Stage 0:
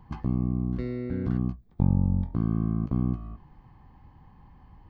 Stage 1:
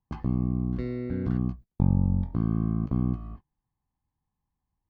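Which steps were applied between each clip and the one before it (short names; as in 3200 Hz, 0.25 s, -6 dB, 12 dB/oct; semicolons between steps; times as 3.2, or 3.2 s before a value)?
gate -41 dBFS, range -31 dB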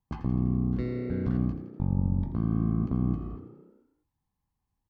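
limiter -18 dBFS, peak gain reduction 7 dB; on a send: frequency-shifting echo 83 ms, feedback 64%, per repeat +31 Hz, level -12 dB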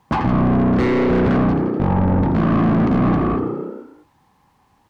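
overdrive pedal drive 35 dB, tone 1200 Hz, clips at -15.5 dBFS; gain +7 dB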